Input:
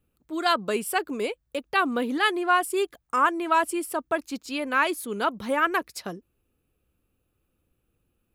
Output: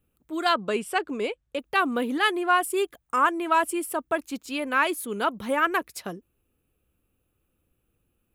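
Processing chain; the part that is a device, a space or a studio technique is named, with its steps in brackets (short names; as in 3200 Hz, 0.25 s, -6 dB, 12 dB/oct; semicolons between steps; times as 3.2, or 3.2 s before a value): 0.49–1.59 LPF 6600 Hz 12 dB/oct; exciter from parts (in parallel at -6.5 dB: HPF 3100 Hz 12 dB/oct + soft clip -31.5 dBFS, distortion -9 dB + HPF 3400 Hz 24 dB/oct)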